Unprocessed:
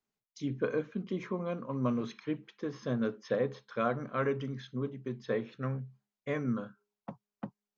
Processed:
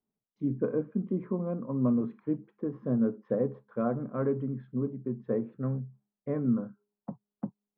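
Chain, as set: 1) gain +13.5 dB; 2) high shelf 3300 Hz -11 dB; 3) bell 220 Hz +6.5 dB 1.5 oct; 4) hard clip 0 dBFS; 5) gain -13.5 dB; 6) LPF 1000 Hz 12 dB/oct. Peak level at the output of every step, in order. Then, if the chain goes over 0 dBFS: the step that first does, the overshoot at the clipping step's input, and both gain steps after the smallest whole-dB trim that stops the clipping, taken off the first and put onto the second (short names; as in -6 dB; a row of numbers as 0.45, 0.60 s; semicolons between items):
-4.0, -4.5, -2.0, -2.0, -15.5, -16.0 dBFS; no overload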